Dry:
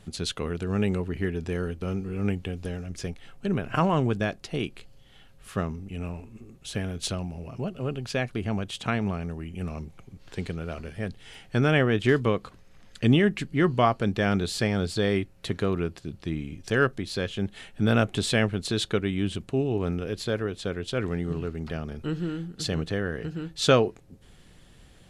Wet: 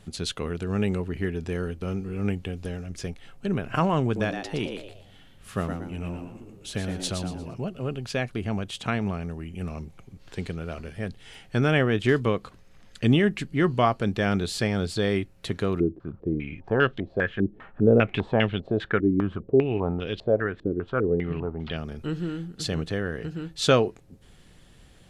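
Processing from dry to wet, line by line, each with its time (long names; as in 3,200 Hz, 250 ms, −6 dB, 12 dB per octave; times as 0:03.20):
0:04.04–0:07.54: echo with shifted repeats 117 ms, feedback 34%, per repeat +89 Hz, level −6.5 dB
0:15.80–0:21.77: low-pass on a step sequencer 5 Hz 330–3,300 Hz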